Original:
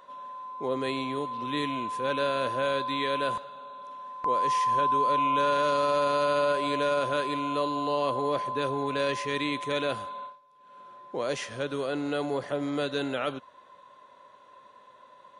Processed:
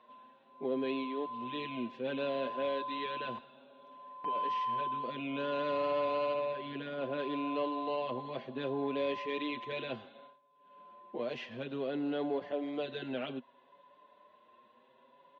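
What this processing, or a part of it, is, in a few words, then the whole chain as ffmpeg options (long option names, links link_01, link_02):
barber-pole flanger into a guitar amplifier: -filter_complex "[0:a]asettb=1/sr,asplit=3[link_01][link_02][link_03];[link_01]atrim=end=6.334[link_04];[link_02]atrim=start=6.33:end=7.19,asetpts=PTS-STARTPTS,afade=type=in:duration=0.004:curve=qsin,afade=type=out:start_time=0.856:duration=0.004:curve=qsin,highshelf=frequency=3900:gain=-11.5[link_05];[link_03]atrim=start=7.186[link_06];[link_04][link_05]acrossfade=duration=0.004:curve1=hsin:curve2=qsin[link_07];[link_07][link_06]acrossfade=duration=0.004:curve1=qsin:curve2=hsin,asplit=2[link_08][link_09];[link_09]adelay=6.1,afreqshift=0.62[link_10];[link_08][link_10]amix=inputs=2:normalize=1,asoftclip=type=tanh:threshold=-20.5dB,highpass=100,equalizer=frequency=240:width_type=q:width=4:gain=9,equalizer=frequency=380:width_type=q:width=4:gain=5,equalizer=frequency=680:width_type=q:width=4:gain=4,equalizer=frequency=1300:width_type=q:width=4:gain=-7,equalizer=frequency=2800:width_type=q:width=4:gain=5,lowpass=frequency=3900:width=0.5412,lowpass=frequency=3900:width=1.3066,volume=-5.5dB"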